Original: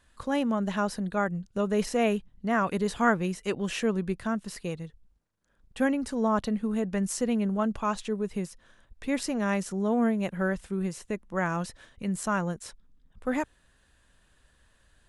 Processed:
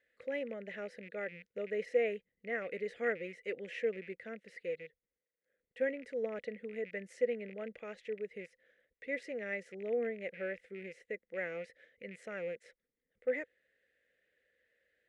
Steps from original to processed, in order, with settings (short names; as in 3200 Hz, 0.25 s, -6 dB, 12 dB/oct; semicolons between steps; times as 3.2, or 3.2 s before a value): rattling part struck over -40 dBFS, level -33 dBFS; double band-pass 1000 Hz, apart 2 oct; gain +1 dB